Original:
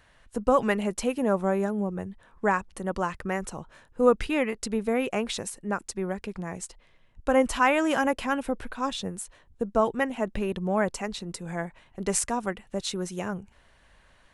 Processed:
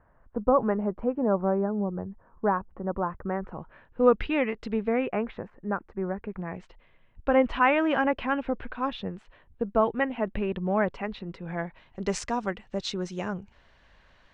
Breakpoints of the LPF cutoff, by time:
LPF 24 dB/oct
3.21 s 1300 Hz
4.03 s 3400 Hz
4.71 s 3400 Hz
5.41 s 1700 Hz
6.17 s 1700 Hz
6.64 s 3100 Hz
11.46 s 3100 Hz
12 s 5700 Hz

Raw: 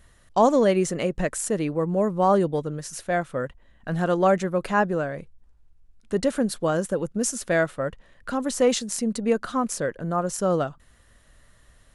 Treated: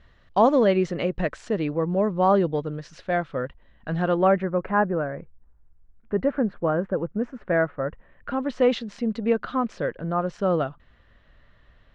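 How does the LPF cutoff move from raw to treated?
LPF 24 dB/oct
3.99 s 4200 Hz
4.54 s 1900 Hz
7.84 s 1900 Hz
8.6 s 3600 Hz

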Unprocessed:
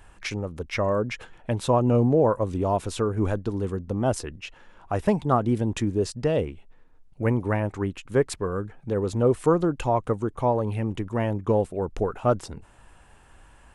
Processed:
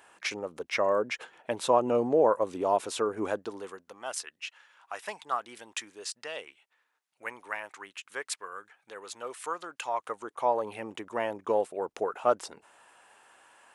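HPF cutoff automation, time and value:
3.34 s 420 Hz
3.99 s 1400 Hz
9.7 s 1400 Hz
10.65 s 530 Hz

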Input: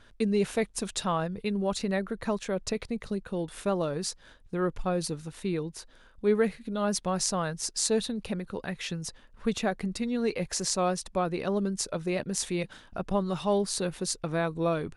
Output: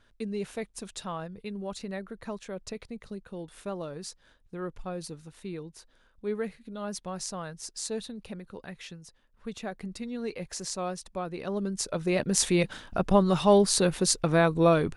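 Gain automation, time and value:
8.82 s -7.5 dB
9.08 s -14 dB
9.87 s -6 dB
11.3 s -6 dB
12.42 s +6.5 dB

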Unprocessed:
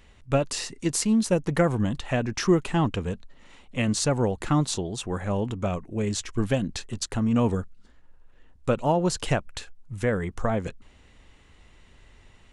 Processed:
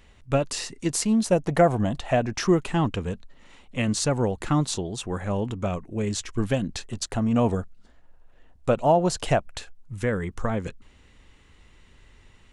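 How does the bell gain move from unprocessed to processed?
bell 680 Hz 0.49 oct
0.78 s +0.5 dB
1.54 s +11 dB
2.04 s +11 dB
2.73 s 0 dB
6.58 s 0 dB
7.19 s +7.5 dB
9.51 s +7.5 dB
10.04 s -4.5 dB

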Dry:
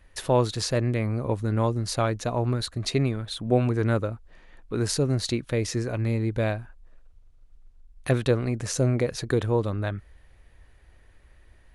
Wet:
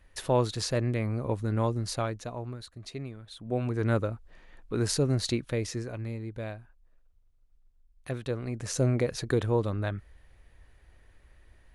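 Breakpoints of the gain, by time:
1.85 s -3.5 dB
2.6 s -14.5 dB
3.21 s -14.5 dB
3.94 s -2 dB
5.35 s -2 dB
6.22 s -11.5 dB
8.2 s -11.5 dB
8.82 s -2.5 dB

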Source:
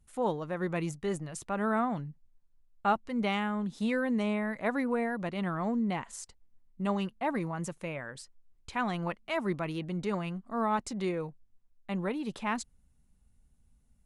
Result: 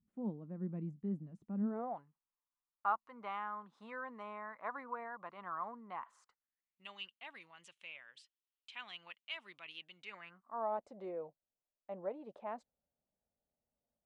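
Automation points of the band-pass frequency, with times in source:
band-pass, Q 4
1.62 s 210 Hz
2.04 s 1100 Hz
6.2 s 1100 Hz
6.89 s 3000 Hz
10 s 3000 Hz
10.73 s 610 Hz

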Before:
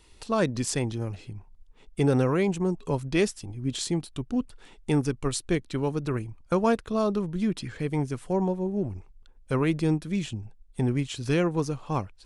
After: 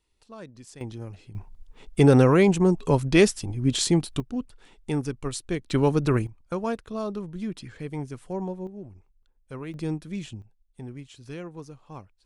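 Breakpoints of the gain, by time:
-18 dB
from 0.81 s -6 dB
from 1.35 s +6.5 dB
from 4.2 s -3 dB
from 5.7 s +6.5 dB
from 6.27 s -5.5 dB
from 8.67 s -12 dB
from 9.74 s -5 dB
from 10.42 s -13.5 dB

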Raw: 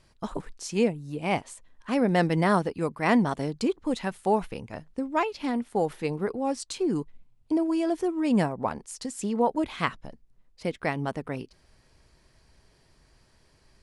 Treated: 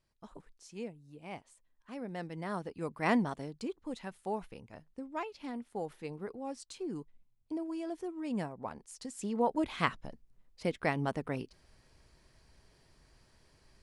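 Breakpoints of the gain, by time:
2.36 s -18 dB
3.07 s -5.5 dB
3.49 s -12.5 dB
8.61 s -12.5 dB
9.79 s -3 dB

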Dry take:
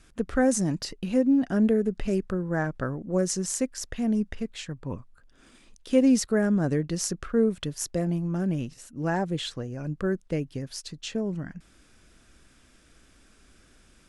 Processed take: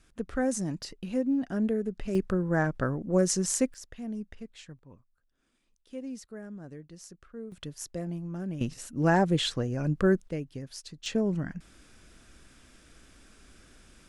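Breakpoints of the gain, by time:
-6 dB
from 2.15 s +1 dB
from 3.74 s -11 dB
from 4.79 s -19 dB
from 7.52 s -8 dB
from 8.61 s +4 dB
from 10.29 s -5.5 dB
from 11.06 s +2 dB

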